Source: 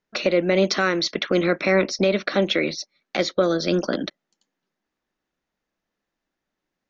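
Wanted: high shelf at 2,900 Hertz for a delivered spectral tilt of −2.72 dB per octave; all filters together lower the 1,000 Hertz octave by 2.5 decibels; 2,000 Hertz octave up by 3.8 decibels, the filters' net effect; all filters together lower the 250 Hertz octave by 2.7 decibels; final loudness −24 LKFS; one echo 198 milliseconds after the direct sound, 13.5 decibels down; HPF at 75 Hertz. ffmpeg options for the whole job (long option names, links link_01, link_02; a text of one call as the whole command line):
ffmpeg -i in.wav -af "highpass=75,equalizer=frequency=250:width_type=o:gain=-4,equalizer=frequency=1000:width_type=o:gain=-6,equalizer=frequency=2000:width_type=o:gain=8,highshelf=frequency=2900:gain=-4.5,aecho=1:1:198:0.211,volume=-2dB" out.wav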